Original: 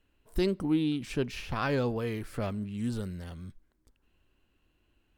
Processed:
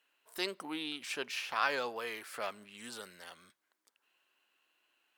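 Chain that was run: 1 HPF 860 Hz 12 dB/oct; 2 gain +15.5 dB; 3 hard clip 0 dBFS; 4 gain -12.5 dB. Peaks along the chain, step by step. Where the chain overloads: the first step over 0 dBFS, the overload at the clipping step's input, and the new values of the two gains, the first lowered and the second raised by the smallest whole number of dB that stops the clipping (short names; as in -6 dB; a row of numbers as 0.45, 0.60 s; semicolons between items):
-18.0, -2.5, -2.5, -15.0 dBFS; no overload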